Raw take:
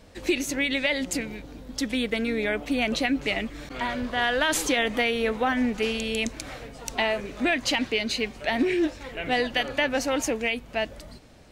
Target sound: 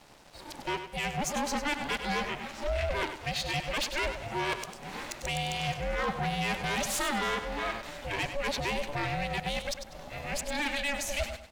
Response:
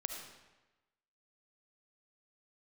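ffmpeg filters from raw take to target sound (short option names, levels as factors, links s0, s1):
-filter_complex "[0:a]areverse,highpass=f=270:w=0.5412,highpass=f=270:w=1.3066,asplit=2[s0][s1];[s1]acompressor=threshold=0.00891:ratio=6,volume=1.26[s2];[s0][s2]amix=inputs=2:normalize=0,asoftclip=type=tanh:threshold=0.0708,aeval=exprs='val(0)*sin(2*PI*290*n/s)':c=same,aeval=exprs='sgn(val(0))*max(abs(val(0))-0.00188,0)':c=same,asplit=2[s3][s4];[s4]aecho=0:1:98|196|294:0.335|0.0971|0.0282[s5];[s3][s5]amix=inputs=2:normalize=0"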